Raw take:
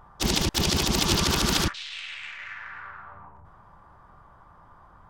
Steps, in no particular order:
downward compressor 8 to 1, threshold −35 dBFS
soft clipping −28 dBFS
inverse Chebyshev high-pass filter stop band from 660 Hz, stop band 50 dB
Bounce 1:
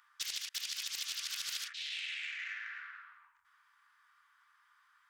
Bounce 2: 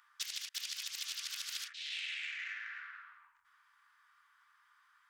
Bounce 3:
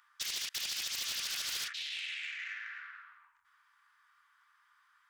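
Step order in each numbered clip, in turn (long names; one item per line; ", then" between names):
inverse Chebyshev high-pass filter, then downward compressor, then soft clipping
downward compressor, then inverse Chebyshev high-pass filter, then soft clipping
inverse Chebyshev high-pass filter, then soft clipping, then downward compressor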